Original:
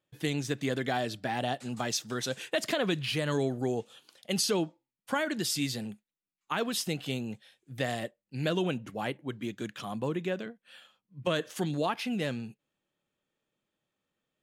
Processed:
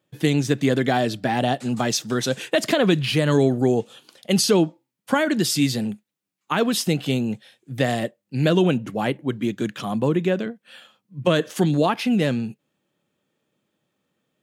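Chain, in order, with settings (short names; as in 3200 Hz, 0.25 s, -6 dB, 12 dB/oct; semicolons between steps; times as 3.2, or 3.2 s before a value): HPF 120 Hz; low shelf 440 Hz +7 dB; gain +7.5 dB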